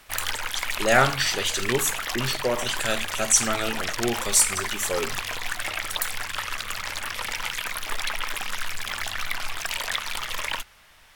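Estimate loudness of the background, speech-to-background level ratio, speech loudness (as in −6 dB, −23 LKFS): −29.5 LKFS, 5.5 dB, −24.0 LKFS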